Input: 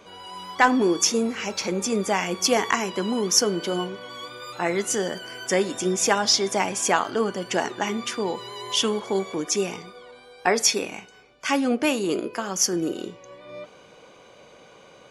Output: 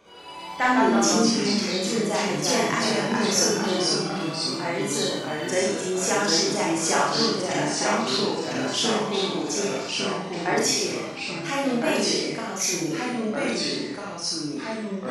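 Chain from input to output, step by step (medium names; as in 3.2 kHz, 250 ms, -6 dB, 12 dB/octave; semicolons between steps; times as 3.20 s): ever faster or slower copies 80 ms, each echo -2 st, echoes 3; Schroeder reverb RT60 0.63 s, combs from 27 ms, DRR -4 dB; trim -7.5 dB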